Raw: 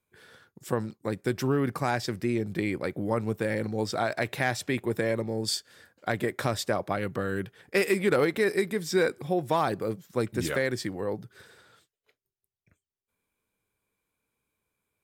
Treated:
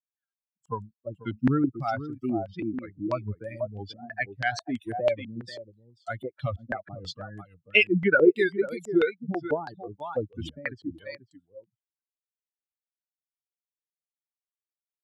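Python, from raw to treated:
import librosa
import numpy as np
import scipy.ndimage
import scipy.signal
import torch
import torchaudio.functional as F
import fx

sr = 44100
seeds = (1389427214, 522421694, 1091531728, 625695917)

p1 = fx.bin_expand(x, sr, power=3.0)
p2 = fx.dynamic_eq(p1, sr, hz=180.0, q=0.79, threshold_db=-43.0, ratio=4.0, max_db=-6, at=(8.74, 9.41), fade=0.02)
p3 = fx.wow_flutter(p2, sr, seeds[0], rate_hz=2.1, depth_cents=140.0)
p4 = p3 + fx.echo_single(p3, sr, ms=490, db=-12.5, dry=0)
p5 = fx.filter_held_lowpass(p4, sr, hz=6.1, low_hz=240.0, high_hz=7700.0)
y = p5 * 10.0 ** (5.5 / 20.0)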